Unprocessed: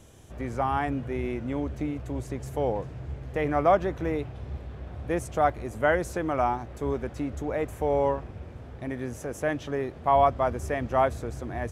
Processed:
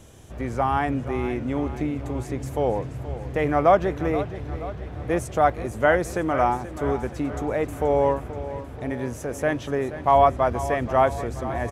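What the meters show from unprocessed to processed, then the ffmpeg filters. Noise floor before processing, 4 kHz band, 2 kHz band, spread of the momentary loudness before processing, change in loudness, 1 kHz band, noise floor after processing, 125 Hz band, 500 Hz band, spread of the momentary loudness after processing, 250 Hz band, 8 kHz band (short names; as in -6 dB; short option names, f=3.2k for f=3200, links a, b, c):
-43 dBFS, +4.5 dB, +4.5 dB, 14 LU, +4.0 dB, +4.5 dB, -37 dBFS, +4.0 dB, +4.5 dB, 13 LU, +4.0 dB, +4.5 dB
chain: -af "aecho=1:1:479|958|1437|1916|2395|2874:0.211|0.12|0.0687|0.0391|0.0223|0.0127,volume=4dB"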